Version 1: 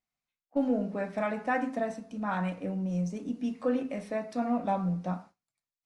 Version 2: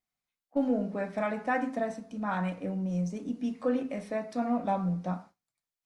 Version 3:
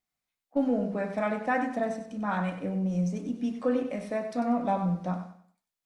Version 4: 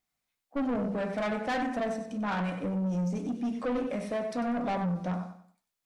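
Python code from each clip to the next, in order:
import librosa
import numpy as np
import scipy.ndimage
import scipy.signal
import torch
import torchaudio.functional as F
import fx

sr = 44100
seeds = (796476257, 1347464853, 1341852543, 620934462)

y1 = fx.notch(x, sr, hz=2700.0, q=22.0)
y2 = fx.echo_feedback(y1, sr, ms=95, feedback_pct=33, wet_db=-10.0)
y2 = F.gain(torch.from_numpy(y2), 1.5).numpy()
y3 = 10.0 ** (-29.5 / 20.0) * np.tanh(y2 / 10.0 ** (-29.5 / 20.0))
y3 = F.gain(torch.from_numpy(y3), 3.0).numpy()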